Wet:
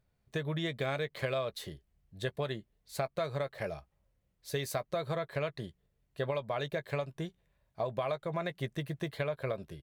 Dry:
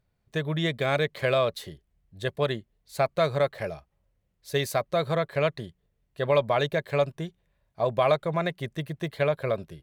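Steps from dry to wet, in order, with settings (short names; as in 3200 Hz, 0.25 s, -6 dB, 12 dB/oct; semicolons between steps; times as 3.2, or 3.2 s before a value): compressor 6:1, threshold -29 dBFS, peak gain reduction 12 dB; doubler 15 ms -13 dB; gain -2 dB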